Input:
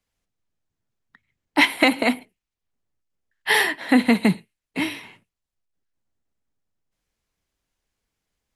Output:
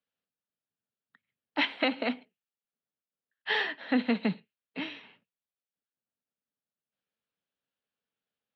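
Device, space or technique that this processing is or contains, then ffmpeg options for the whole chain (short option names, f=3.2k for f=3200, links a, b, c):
kitchen radio: -af "highpass=230,equalizer=f=340:t=q:w=4:g=-10,equalizer=f=730:t=q:w=4:g=-4,equalizer=f=1k:t=q:w=4:g=-7,equalizer=f=2.1k:t=q:w=4:g=-8,lowpass=f=3.7k:w=0.5412,lowpass=f=3.7k:w=1.3066,volume=-6dB"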